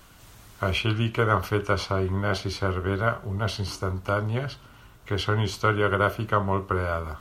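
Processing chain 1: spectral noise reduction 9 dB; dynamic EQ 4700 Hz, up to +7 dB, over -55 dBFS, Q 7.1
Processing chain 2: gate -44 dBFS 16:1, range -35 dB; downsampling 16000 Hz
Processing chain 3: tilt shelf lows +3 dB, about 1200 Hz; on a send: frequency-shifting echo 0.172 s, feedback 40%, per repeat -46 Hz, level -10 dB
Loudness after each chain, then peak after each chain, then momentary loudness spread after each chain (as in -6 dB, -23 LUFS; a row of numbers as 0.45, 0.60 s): -26.0, -26.0, -24.5 LUFS; -7.5, -7.5, -6.5 dBFS; 6, 7, 7 LU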